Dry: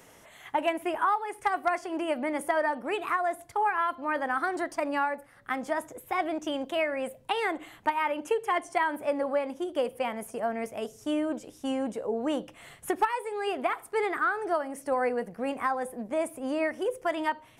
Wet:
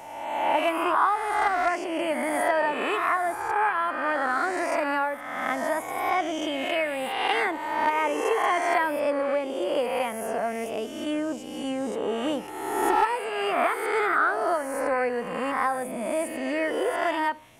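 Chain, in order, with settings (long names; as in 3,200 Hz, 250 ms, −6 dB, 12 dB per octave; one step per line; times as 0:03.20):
peak hold with a rise ahead of every peak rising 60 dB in 1.38 s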